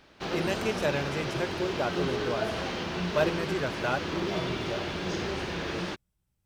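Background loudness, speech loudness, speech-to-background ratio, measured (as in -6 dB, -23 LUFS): -32.5 LUFS, -33.0 LUFS, -0.5 dB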